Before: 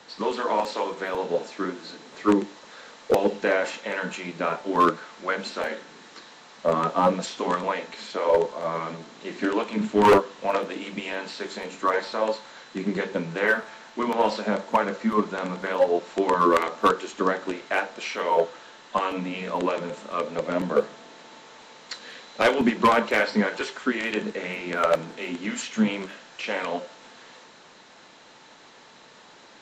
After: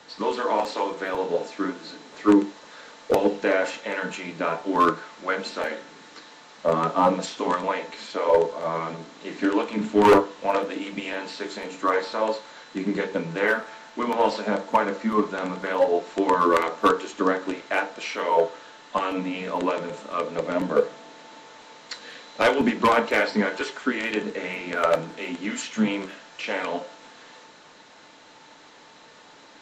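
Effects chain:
feedback delay network reverb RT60 0.31 s, low-frequency decay 0.85×, high-frequency decay 0.35×, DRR 9 dB

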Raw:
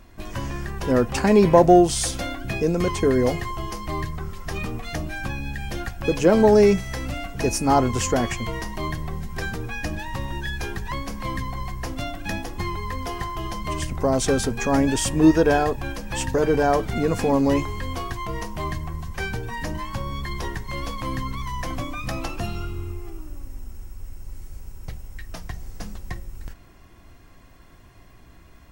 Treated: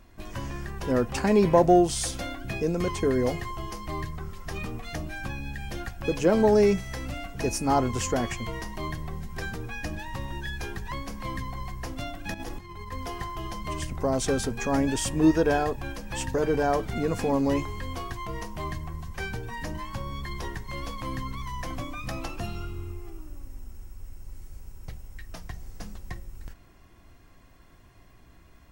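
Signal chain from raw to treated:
0:12.34–0:12.92: compressor whose output falls as the input rises −32 dBFS, ratio −0.5
level −5 dB

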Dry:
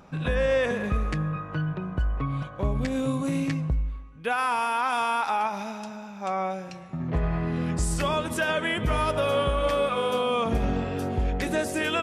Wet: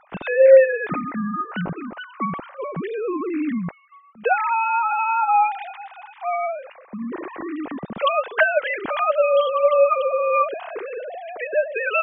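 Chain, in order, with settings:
three sine waves on the formant tracks
level +5 dB

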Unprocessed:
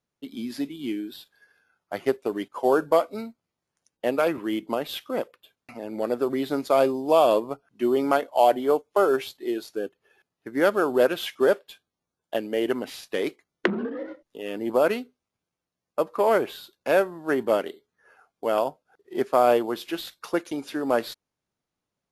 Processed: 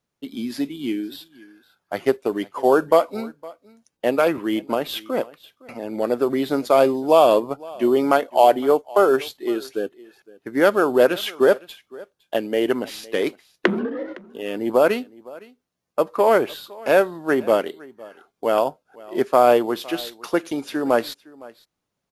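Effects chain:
single-tap delay 511 ms −22 dB
level +4.5 dB

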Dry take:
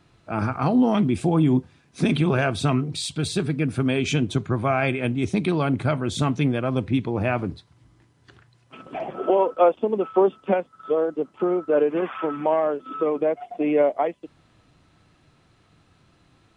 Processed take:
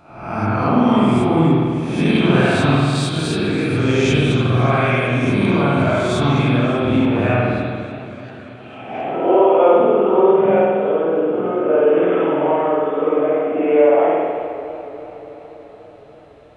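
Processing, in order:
peak hold with a rise ahead of every peak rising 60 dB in 0.79 s
spring reverb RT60 1.8 s, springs 49 ms, chirp 70 ms, DRR −6.5 dB
feedback echo with a swinging delay time 287 ms, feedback 73%, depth 78 cents, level −16 dB
level −2.5 dB

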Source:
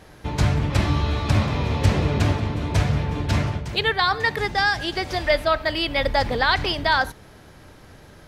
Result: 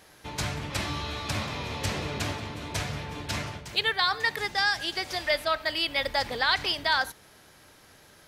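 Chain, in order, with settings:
spectral tilt +2.5 dB per octave
level −6.5 dB

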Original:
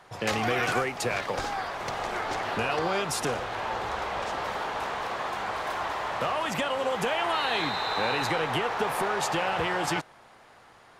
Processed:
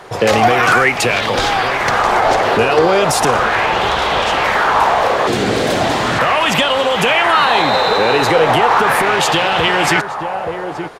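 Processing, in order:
slap from a distant wall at 150 metres, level −12 dB
soft clipping −15.5 dBFS, distortion −27 dB
0:05.27–0:06.19: octave-band graphic EQ 125/250/1,000/4,000/8,000 Hz +10/+12/−11/+4/+6 dB
boost into a limiter +21.5 dB
auto-filter bell 0.37 Hz 410–3,500 Hz +8 dB
level −6 dB

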